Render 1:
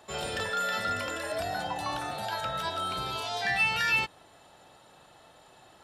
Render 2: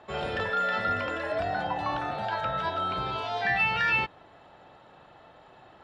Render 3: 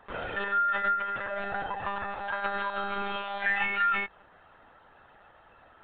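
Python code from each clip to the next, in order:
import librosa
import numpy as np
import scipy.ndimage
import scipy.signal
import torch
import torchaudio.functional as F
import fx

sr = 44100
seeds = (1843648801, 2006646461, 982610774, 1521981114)

y1 = scipy.signal.sosfilt(scipy.signal.butter(2, 2500.0, 'lowpass', fs=sr, output='sos'), x)
y1 = F.gain(torch.from_numpy(y1), 3.5).numpy()
y2 = fx.peak_eq(y1, sr, hz=1500.0, db=9.0, octaves=0.95)
y2 = fx.lpc_monotone(y2, sr, seeds[0], pitch_hz=200.0, order=16)
y2 = F.gain(torch.from_numpy(y2), -6.5).numpy()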